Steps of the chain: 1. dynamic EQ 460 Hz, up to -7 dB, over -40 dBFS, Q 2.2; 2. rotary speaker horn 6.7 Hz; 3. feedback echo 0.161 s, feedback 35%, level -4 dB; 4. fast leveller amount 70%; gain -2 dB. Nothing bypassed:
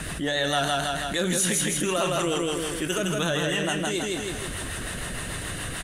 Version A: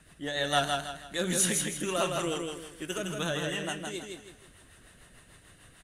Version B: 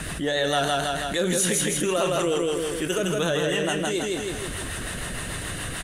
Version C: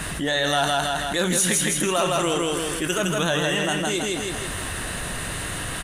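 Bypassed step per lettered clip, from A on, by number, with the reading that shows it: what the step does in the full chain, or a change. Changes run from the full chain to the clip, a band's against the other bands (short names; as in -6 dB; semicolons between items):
4, crest factor change +6.0 dB; 1, loudness change +1.0 LU; 2, loudness change +3.0 LU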